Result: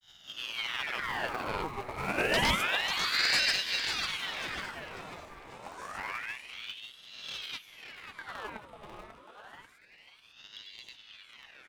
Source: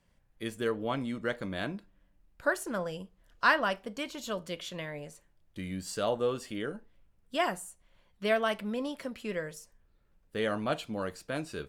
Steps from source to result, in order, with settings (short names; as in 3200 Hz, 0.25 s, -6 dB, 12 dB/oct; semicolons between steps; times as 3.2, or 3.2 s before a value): spectral swells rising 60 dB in 1.30 s; Doppler pass-by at 2.45, 10 m/s, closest 6.6 m; high shelf 2700 Hz -4 dB; in parallel at -6 dB: Schmitt trigger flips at -39 dBFS; on the sum: grains, pitch spread up and down by 0 st; wavefolder -21.5 dBFS; on a send: feedback echo 0.543 s, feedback 47%, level -7.5 dB; on the sum: ring modulator with a swept carrier 2000 Hz, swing 70%, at 0.28 Hz; gain +4 dB